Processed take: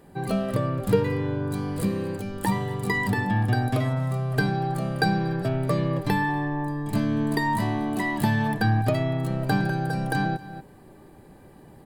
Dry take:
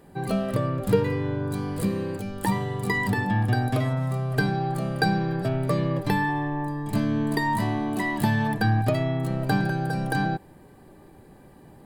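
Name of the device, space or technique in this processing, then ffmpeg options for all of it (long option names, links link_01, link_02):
ducked delay: -filter_complex "[0:a]asplit=3[link_01][link_02][link_03];[link_02]adelay=239,volume=-8.5dB[link_04];[link_03]apad=whole_len=533527[link_05];[link_04][link_05]sidechaincompress=threshold=-37dB:ratio=10:attack=16:release=268[link_06];[link_01][link_06]amix=inputs=2:normalize=0"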